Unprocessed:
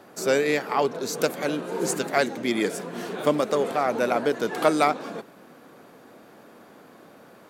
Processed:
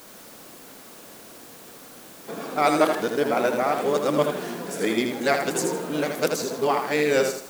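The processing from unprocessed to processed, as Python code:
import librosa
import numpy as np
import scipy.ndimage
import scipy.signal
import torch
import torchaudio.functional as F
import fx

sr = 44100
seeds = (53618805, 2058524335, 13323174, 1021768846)

y = x[::-1].copy()
y = fx.quant_dither(y, sr, seeds[0], bits=8, dither='triangular')
y = fx.echo_feedback(y, sr, ms=80, feedback_pct=33, wet_db=-6)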